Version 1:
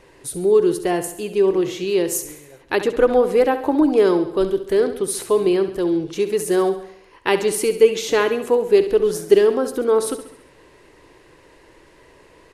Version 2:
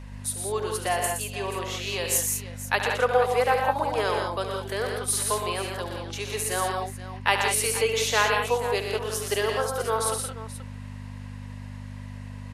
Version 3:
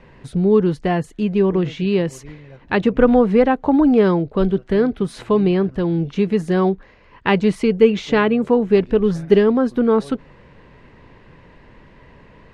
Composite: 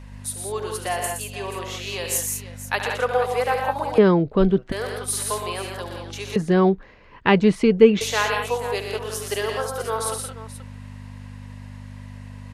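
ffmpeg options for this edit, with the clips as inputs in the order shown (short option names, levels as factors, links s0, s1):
-filter_complex "[2:a]asplit=2[s0][s1];[1:a]asplit=3[s2][s3][s4];[s2]atrim=end=3.982[s5];[s0]atrim=start=3.978:end=4.722[s6];[s3]atrim=start=4.718:end=6.362[s7];[s1]atrim=start=6.358:end=8.012[s8];[s4]atrim=start=8.008[s9];[s5][s6]acrossfade=d=0.004:c1=hsin:c2=hsin[s10];[s10][s7]acrossfade=d=0.004:c1=hsin:c2=hsin[s11];[s11][s8]acrossfade=d=0.004:c1=hsin:c2=hsin[s12];[s12][s9]acrossfade=d=0.004:c1=hsin:c2=hsin"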